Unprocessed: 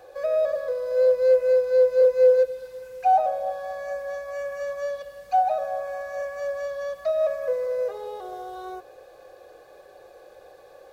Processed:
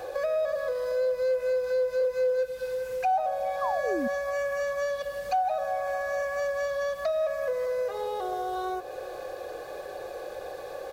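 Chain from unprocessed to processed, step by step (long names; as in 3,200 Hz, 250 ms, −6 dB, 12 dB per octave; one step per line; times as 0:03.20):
far-end echo of a speakerphone 390 ms, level −21 dB
in parallel at −1 dB: brickwall limiter −21.5 dBFS, peak gain reduction 11.5 dB
on the sum: dynamic equaliser 450 Hz, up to −7 dB, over −30 dBFS, Q 0.99
downward compressor 2 to 1, threshold −38 dBFS, peak gain reduction 12 dB
sound drawn into the spectrogram fall, 0:03.61–0:04.08, 220–1,200 Hz −36 dBFS
level +5.5 dB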